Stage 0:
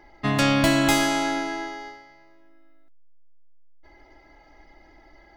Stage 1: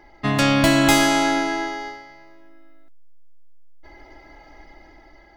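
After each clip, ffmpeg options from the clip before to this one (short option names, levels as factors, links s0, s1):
-af "dynaudnorm=f=240:g=7:m=1.78,volume=1.26"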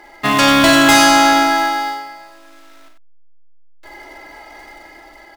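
-filter_complex "[0:a]acrusher=bits=4:mode=log:mix=0:aa=0.000001,aecho=1:1:47|93:0.473|0.398,asplit=2[s0][s1];[s1]highpass=f=720:p=1,volume=6.31,asoftclip=type=tanh:threshold=0.944[s2];[s0][s2]amix=inputs=2:normalize=0,lowpass=f=6100:p=1,volume=0.501"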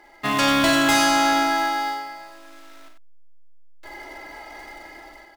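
-af "dynaudnorm=f=110:g=5:m=2.24,volume=0.376"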